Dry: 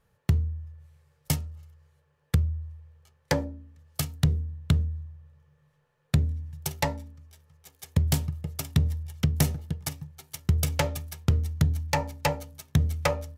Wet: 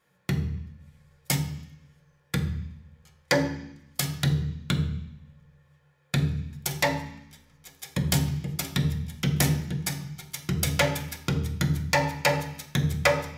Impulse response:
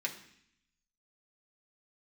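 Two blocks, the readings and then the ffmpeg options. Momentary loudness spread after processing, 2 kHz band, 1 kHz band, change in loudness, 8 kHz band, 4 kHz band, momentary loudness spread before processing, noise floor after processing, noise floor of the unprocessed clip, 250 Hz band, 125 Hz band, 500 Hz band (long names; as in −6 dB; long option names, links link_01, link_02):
12 LU, +7.5 dB, +3.0 dB, +1.0 dB, +4.0 dB, +5.5 dB, 14 LU, −65 dBFS, −69 dBFS, +3.0 dB, −1.0 dB, +4.0 dB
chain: -filter_complex "[1:a]atrim=start_sample=2205,asetrate=41013,aresample=44100[link_01];[0:a][link_01]afir=irnorm=-1:irlink=0,volume=3dB"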